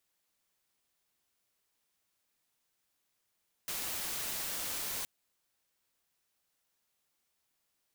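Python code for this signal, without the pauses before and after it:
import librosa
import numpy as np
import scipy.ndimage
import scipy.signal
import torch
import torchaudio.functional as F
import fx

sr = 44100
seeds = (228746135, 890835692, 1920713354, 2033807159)

y = fx.noise_colour(sr, seeds[0], length_s=1.37, colour='white', level_db=-37.5)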